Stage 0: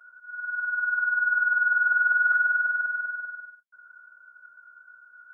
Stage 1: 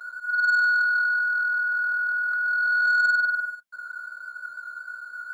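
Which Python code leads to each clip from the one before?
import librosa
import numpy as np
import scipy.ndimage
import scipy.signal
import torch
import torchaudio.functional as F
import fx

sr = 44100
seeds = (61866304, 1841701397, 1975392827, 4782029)

y = fx.hum_notches(x, sr, base_hz=60, count=2)
y = fx.over_compress(y, sr, threshold_db=-30.0, ratio=-1.0)
y = fx.leveller(y, sr, passes=1)
y = F.gain(torch.from_numpy(y), 4.5).numpy()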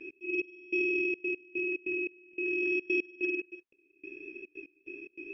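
y = scipy.ndimage.gaussian_filter1d(x, 1.9, mode='constant')
y = fx.step_gate(y, sr, bpm=145, pattern='x.xx...xxxx.x..x', floor_db=-24.0, edge_ms=4.5)
y = y * np.sin(2.0 * np.pi * 1100.0 * np.arange(len(y)) / sr)
y = F.gain(torch.from_numpy(y), -3.5).numpy()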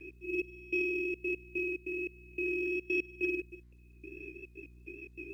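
y = fx.dmg_buzz(x, sr, base_hz=60.0, harmonics=6, level_db=-55.0, tilt_db=-8, odd_only=False)
y = fx.rotary_switch(y, sr, hz=1.2, then_hz=5.5, switch_at_s=3.67)
y = fx.quant_companded(y, sr, bits=8)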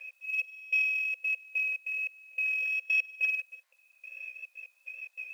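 y = fx.brickwall_highpass(x, sr, low_hz=500.0)
y = F.gain(torch.from_numpy(y), 7.5).numpy()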